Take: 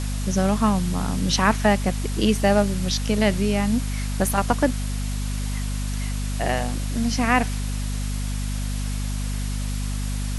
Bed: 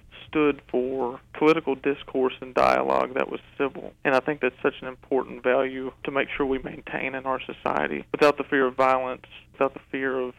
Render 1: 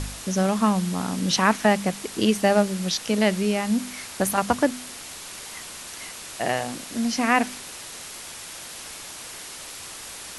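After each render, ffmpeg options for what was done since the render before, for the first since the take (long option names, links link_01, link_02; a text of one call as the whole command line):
ffmpeg -i in.wav -af "bandreject=frequency=50:width_type=h:width=4,bandreject=frequency=100:width_type=h:width=4,bandreject=frequency=150:width_type=h:width=4,bandreject=frequency=200:width_type=h:width=4,bandreject=frequency=250:width_type=h:width=4" out.wav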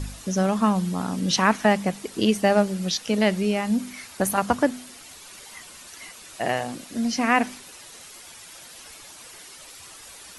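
ffmpeg -i in.wav -af "afftdn=noise_reduction=9:noise_floor=-39" out.wav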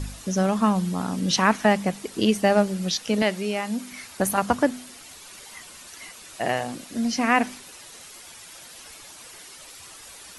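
ffmpeg -i in.wav -filter_complex "[0:a]asettb=1/sr,asplit=3[link_01][link_02][link_03];[link_01]atrim=end=3.224[link_04];[link_02]atrim=start=3.22:end=3.92,asetpts=PTS-STARTPTS,afade=type=in:duration=0.004:curve=qsin,afade=type=out:start_time=0.696:duration=0.004:curve=qsin,highpass=frequency=360:poles=1[link_05];[link_03]atrim=start=3.916[link_06];[link_04][link_05]acrossfade=duration=0.004:curve1=hsin:curve2=qsin[link_07];[link_07][link_06]acrossfade=duration=0.004:curve1=qsin:curve2=hsin" out.wav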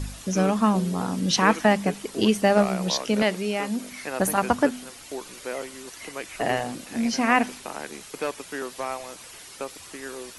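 ffmpeg -i in.wav -i bed.wav -filter_complex "[1:a]volume=-11dB[link_01];[0:a][link_01]amix=inputs=2:normalize=0" out.wav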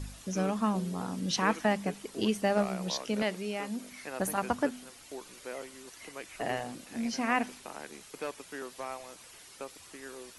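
ffmpeg -i in.wav -af "volume=-8.5dB" out.wav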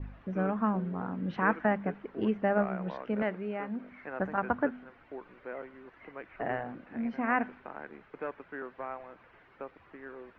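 ffmpeg -i in.wav -af "lowpass=frequency=2000:width=0.5412,lowpass=frequency=2000:width=1.3066,adynamicequalizer=threshold=0.00251:dfrequency=1500:dqfactor=5.9:tfrequency=1500:tqfactor=5.9:attack=5:release=100:ratio=0.375:range=3:mode=boostabove:tftype=bell" out.wav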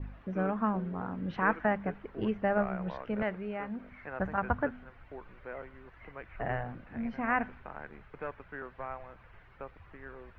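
ffmpeg -i in.wav -af "asubboost=boost=9:cutoff=93" out.wav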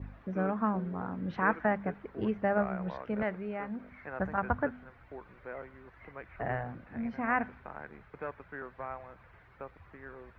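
ffmpeg -i in.wav -af "highpass=52,equalizer=frequency=2900:width=4.1:gain=-5" out.wav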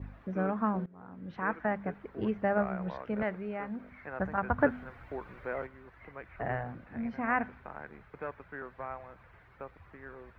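ffmpeg -i in.wav -filter_complex "[0:a]asettb=1/sr,asplit=3[link_01][link_02][link_03];[link_01]atrim=end=4.584[link_04];[link_02]atrim=start=4.58:end=5.67,asetpts=PTS-STARTPTS,afade=type=in:duration=0.004:curve=qsin,afade=type=out:start_time=1.086:duration=0.004:curve=qsin,acontrast=55[link_05];[link_03]atrim=start=5.666[link_06];[link_04][link_05]acrossfade=duration=0.004:curve1=hsin:curve2=qsin[link_07];[link_07][link_06]acrossfade=duration=0.004:curve1=qsin:curve2=hsin,asplit=2[link_08][link_09];[link_08]atrim=end=0.86,asetpts=PTS-STARTPTS,afade=type=out:start_time=0.856:duration=0.004:curve=hsin:silence=0.0749894[link_10];[link_09]atrim=start=0.86,asetpts=PTS-STARTPTS,afade=type=in:duration=1.6:curve=qsin:silence=0.0749894[link_11];[link_10][link_11]concat=n=2:v=0:a=1" out.wav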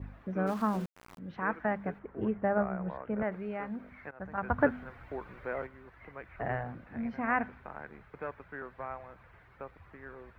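ffmpeg -i in.wav -filter_complex "[0:a]asplit=3[link_01][link_02][link_03];[link_01]afade=type=out:start_time=0.46:duration=0.02[link_04];[link_02]aeval=exprs='val(0)*gte(abs(val(0)),0.0075)':channel_layout=same,afade=type=in:start_time=0.46:duration=0.02,afade=type=out:start_time=1.17:duration=0.02[link_05];[link_03]afade=type=in:start_time=1.17:duration=0.02[link_06];[link_04][link_05][link_06]amix=inputs=3:normalize=0,asettb=1/sr,asplit=3[link_07][link_08][link_09];[link_07]atrim=end=1.994[link_10];[link_08]atrim=start=1.99:end=3.32,asetpts=PTS-STARTPTS,afade=type=in:duration=0.004:curve=qsin,afade=type=out:start_time=1.326:duration=0.004:curve=qsin,lowpass=1800[link_11];[link_09]atrim=start=3.316[link_12];[link_10][link_11]acrossfade=duration=0.004:curve1=hsin:curve2=qsin[link_13];[link_13][link_12]acrossfade=duration=0.004:curve1=qsin:curve2=hsin,asplit=2[link_14][link_15];[link_14]atrim=end=4.11,asetpts=PTS-STARTPTS,afade=type=out:start_time=4.106:duration=0.004:curve=hsin:silence=0.105925[link_16];[link_15]atrim=start=4.11,asetpts=PTS-STARTPTS,afade=type=in:duration=0.43:silence=0.105925[link_17];[link_16][link_17]concat=n=2:v=0:a=1" out.wav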